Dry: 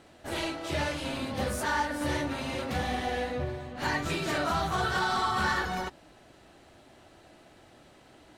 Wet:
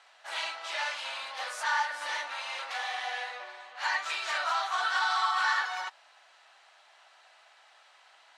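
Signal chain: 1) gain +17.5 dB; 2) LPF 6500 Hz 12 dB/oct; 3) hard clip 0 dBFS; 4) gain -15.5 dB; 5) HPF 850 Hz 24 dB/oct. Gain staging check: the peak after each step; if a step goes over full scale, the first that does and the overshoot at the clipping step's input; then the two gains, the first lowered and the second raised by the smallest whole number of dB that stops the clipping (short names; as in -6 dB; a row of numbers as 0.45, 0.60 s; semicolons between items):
-1.5, -1.5, -1.5, -17.0, -16.5 dBFS; no overload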